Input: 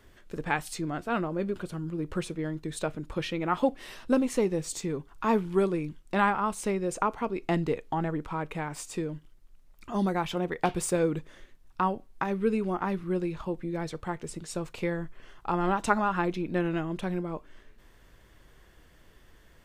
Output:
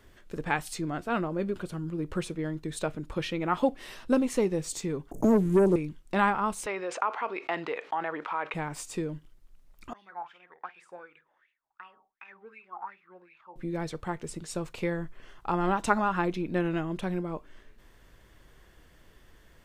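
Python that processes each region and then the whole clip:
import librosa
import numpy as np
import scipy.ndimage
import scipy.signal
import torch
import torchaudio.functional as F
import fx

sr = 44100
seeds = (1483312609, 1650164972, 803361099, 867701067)

y = fx.chain(x, sr, fx.cheby1_bandstop(low_hz=630.0, high_hz=6500.0, order=4),
    fx.leveller(passes=2),
    fx.band_squash(depth_pct=70), at=(5.11, 5.76))
y = fx.chain(y, sr, fx.bandpass_edges(low_hz=790.0, high_hz=2800.0),
    fx.env_flatten(amount_pct=50), at=(6.66, 8.54))
y = fx.chain(y, sr, fx.room_flutter(wall_m=8.7, rt60_s=0.25),
    fx.wah_lfo(hz=2.7, low_hz=780.0, high_hz=2600.0, q=9.0), at=(9.93, 13.56))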